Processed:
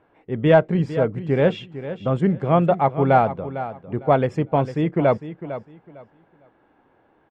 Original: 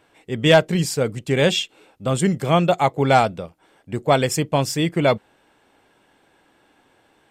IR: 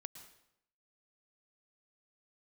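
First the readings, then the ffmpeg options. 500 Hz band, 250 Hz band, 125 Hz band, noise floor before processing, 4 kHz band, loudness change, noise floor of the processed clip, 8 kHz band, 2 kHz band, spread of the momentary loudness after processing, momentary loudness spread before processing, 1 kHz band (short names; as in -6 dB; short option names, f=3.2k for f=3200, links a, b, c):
0.0 dB, 0.0 dB, 0.0 dB, -61 dBFS, -15.5 dB, -1.0 dB, -61 dBFS, under -25 dB, -5.5 dB, 15 LU, 14 LU, -0.5 dB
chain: -af "lowpass=1.4k,aecho=1:1:453|906|1359:0.237|0.0545|0.0125"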